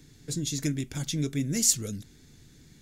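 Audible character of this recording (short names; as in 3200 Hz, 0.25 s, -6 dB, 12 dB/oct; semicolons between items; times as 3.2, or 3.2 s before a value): noise floor -55 dBFS; spectral tilt -3.5 dB/oct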